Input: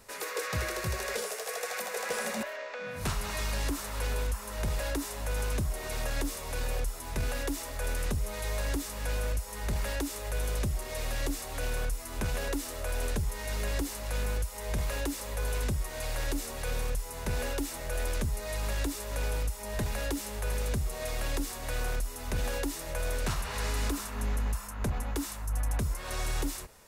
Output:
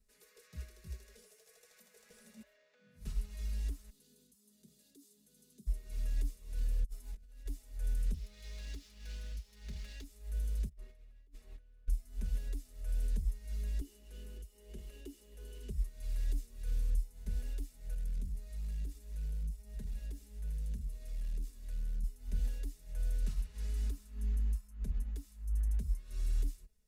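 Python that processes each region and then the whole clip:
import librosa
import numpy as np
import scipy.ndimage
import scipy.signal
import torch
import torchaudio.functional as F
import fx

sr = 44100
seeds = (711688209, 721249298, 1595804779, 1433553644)

y = fx.chain(x, sr, fx.highpass(hz=190.0, slope=24),
    fx.band_shelf(hz=1200.0, db=-14.0, octaves=2.6),
    fx.notch(hz=5500.0, q=18.0), at=(3.9, 5.67))
y = fx.chain(y, sr, fx.peak_eq(hz=100.0, db=-9.0, octaves=1.4),
    fx.over_compress(threshold_db=-38.0, ratio=-0.5), at=(6.84, 7.46))
y = fx.chain(y, sr, fx.median_filter(points=5),
    fx.highpass(hz=66.0, slope=12),
    fx.peak_eq(hz=4500.0, db=13.0, octaves=2.9), at=(8.14, 10.04))
y = fx.chain(y, sr, fx.bass_treble(bass_db=-6, treble_db=-14),
    fx.over_compress(threshold_db=-41.0, ratio=-0.5), at=(10.69, 11.88))
y = fx.chain(y, sr, fx.low_shelf(hz=140.0, db=-10.5),
    fx.small_body(hz=(350.0, 2900.0), ring_ms=30, db=16), at=(13.81, 15.7))
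y = fx.chain(y, sr, fx.echo_single(ms=99, db=-14.0),
    fx.transformer_sat(knee_hz=110.0), at=(17.94, 22.04))
y = fx.tone_stack(y, sr, knobs='10-0-1')
y = y + 0.64 * np.pad(y, (int(4.7 * sr / 1000.0), 0))[:len(y)]
y = fx.upward_expand(y, sr, threshold_db=-51.0, expansion=1.5)
y = F.gain(torch.from_numpy(y), 4.5).numpy()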